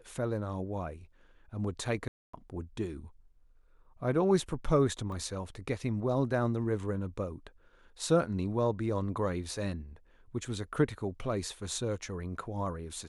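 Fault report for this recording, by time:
2.08–2.33 gap 0.255 s
5.12 gap 2.2 ms

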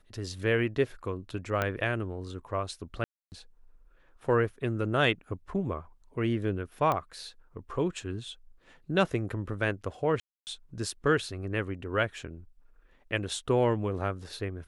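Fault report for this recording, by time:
1.62 pop -14 dBFS
3.04–3.32 gap 0.279 s
6.92 pop -16 dBFS
10.2–10.47 gap 0.269 s

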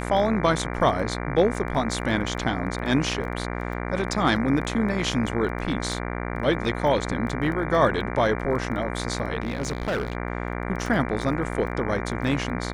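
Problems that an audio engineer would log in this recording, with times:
buzz 60 Hz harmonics 39 -30 dBFS
crackle 11/s -32 dBFS
9.42–10.15 clipped -22 dBFS

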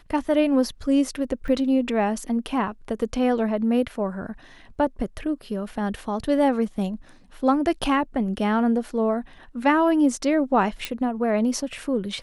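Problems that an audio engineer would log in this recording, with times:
1.48 gap 2.6 ms
10.85 pop -11 dBFS

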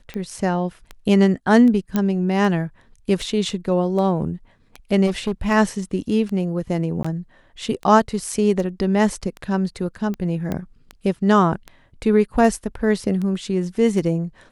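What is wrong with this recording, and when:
tick 78 rpm -18 dBFS
1.96 pop -8 dBFS
5.06–5.52 clipped -17 dBFS
7.03–7.04 gap 15 ms
10.52 pop -13 dBFS

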